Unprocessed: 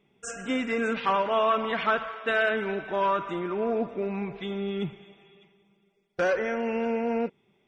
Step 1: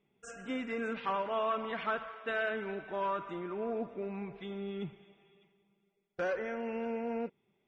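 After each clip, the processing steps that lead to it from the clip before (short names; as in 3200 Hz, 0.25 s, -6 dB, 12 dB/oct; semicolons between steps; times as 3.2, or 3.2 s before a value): high shelf 5200 Hz -8.5 dB; gain -8.5 dB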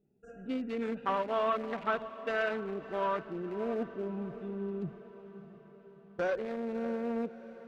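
Wiener smoothing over 41 samples; diffused feedback echo 0.637 s, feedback 53%, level -14 dB; gain +3.5 dB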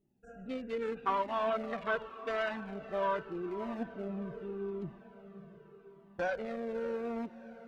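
cascading flanger falling 0.83 Hz; gain +3.5 dB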